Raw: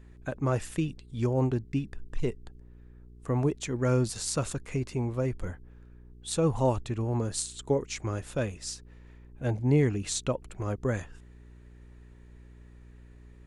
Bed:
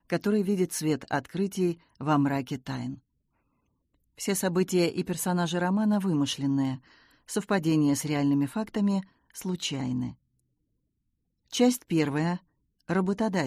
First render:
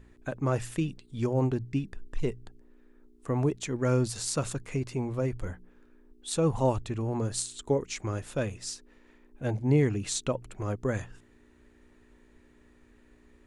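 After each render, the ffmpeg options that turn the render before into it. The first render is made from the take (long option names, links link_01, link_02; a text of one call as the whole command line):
ffmpeg -i in.wav -af "bandreject=frequency=60:width_type=h:width=4,bandreject=frequency=120:width_type=h:width=4,bandreject=frequency=180:width_type=h:width=4" out.wav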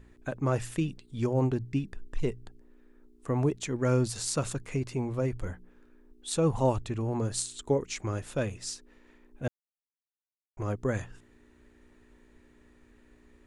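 ffmpeg -i in.wav -filter_complex "[0:a]asplit=3[link_01][link_02][link_03];[link_01]atrim=end=9.48,asetpts=PTS-STARTPTS,afade=type=out:start_time=9.476:duration=0.004:curve=hsin[link_04];[link_02]atrim=start=9.48:end=10.57,asetpts=PTS-STARTPTS,volume=0[link_05];[link_03]atrim=start=10.57,asetpts=PTS-STARTPTS,afade=type=in:duration=0.004:curve=hsin[link_06];[link_04][link_05][link_06]concat=n=3:v=0:a=1" out.wav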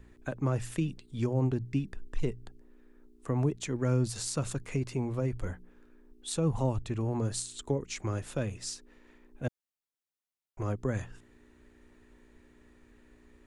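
ffmpeg -i in.wav -filter_complex "[0:a]acrossover=split=260[link_01][link_02];[link_02]acompressor=threshold=-34dB:ratio=2.5[link_03];[link_01][link_03]amix=inputs=2:normalize=0" out.wav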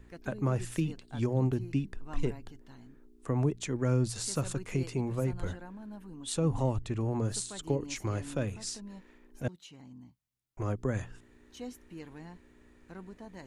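ffmpeg -i in.wav -i bed.wav -filter_complex "[1:a]volume=-20.5dB[link_01];[0:a][link_01]amix=inputs=2:normalize=0" out.wav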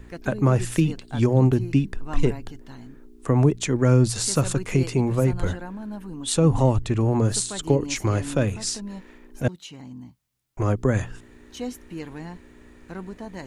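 ffmpeg -i in.wav -af "volume=10.5dB" out.wav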